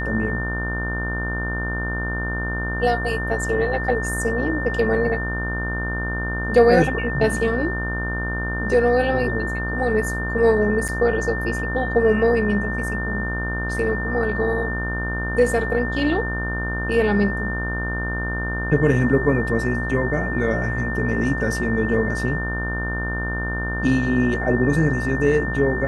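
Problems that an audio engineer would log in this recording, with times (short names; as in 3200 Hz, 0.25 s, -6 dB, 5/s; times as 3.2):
buzz 60 Hz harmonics 31 -27 dBFS
tone 1800 Hz -27 dBFS
10.88–10.89 gap 7.1 ms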